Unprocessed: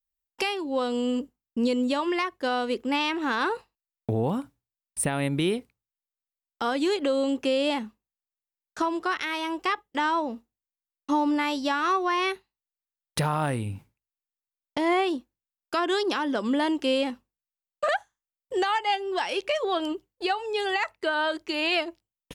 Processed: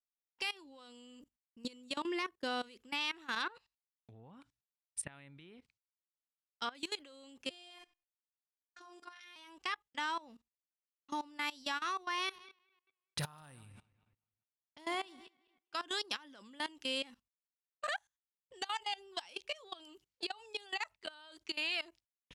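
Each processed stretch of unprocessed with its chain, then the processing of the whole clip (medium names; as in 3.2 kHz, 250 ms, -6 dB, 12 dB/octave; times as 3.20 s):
1.97–2.63 s: peaking EQ 350 Hz +12 dB 1.3 oct + gate -43 dBFS, range -9 dB
3.40–6.75 s: low-pass that closes with the level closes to 1.5 kHz, closed at -21 dBFS + treble shelf 3.5 kHz +9.5 dB
7.50–9.36 s: high-pass 120 Hz + robot voice 353 Hz + flutter echo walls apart 7.5 m, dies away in 0.28 s
12.18–15.94 s: backward echo that repeats 103 ms, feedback 48%, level -13.5 dB + dynamic bell 2.2 kHz, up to -5 dB, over -44 dBFS
18.61–21.57 s: dynamic bell 1.8 kHz, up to -6 dB, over -41 dBFS, Q 1.5 + three bands compressed up and down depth 100%
whole clip: level-controlled noise filter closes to 2.9 kHz, open at -25 dBFS; amplifier tone stack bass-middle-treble 5-5-5; level held to a coarse grid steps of 20 dB; trim +4 dB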